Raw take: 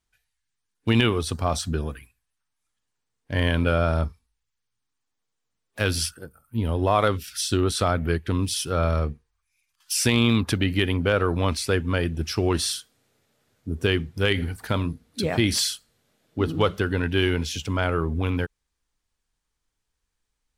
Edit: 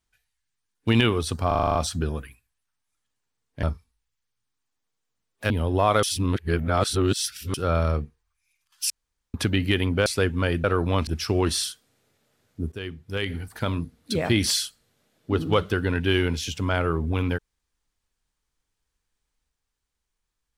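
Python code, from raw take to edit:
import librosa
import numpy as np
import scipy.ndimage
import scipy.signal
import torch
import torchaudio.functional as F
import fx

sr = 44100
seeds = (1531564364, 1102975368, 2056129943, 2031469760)

y = fx.edit(x, sr, fx.stutter(start_s=1.47, slice_s=0.04, count=8),
    fx.cut(start_s=3.35, length_s=0.63),
    fx.cut(start_s=5.85, length_s=0.73),
    fx.reverse_span(start_s=7.11, length_s=1.51),
    fx.room_tone_fill(start_s=9.98, length_s=0.44),
    fx.move(start_s=11.14, length_s=0.43, to_s=12.15),
    fx.fade_in_from(start_s=13.8, length_s=1.25, floor_db=-15.0), tone=tone)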